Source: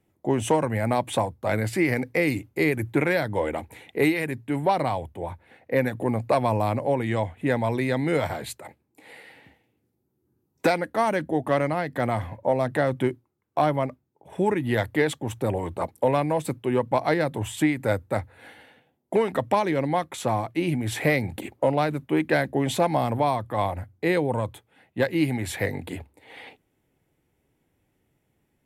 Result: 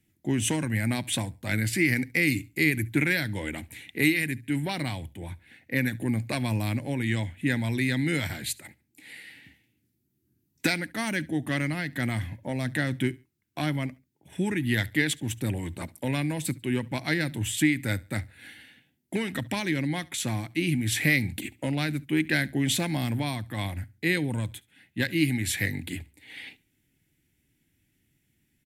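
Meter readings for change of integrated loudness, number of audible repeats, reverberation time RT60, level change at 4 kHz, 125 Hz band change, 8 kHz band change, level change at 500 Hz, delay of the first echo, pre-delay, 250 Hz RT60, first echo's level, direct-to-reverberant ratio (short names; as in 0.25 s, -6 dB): -2.5 dB, 2, none, +4.5 dB, 0.0 dB, +5.5 dB, -11.5 dB, 70 ms, none, none, -24.0 dB, none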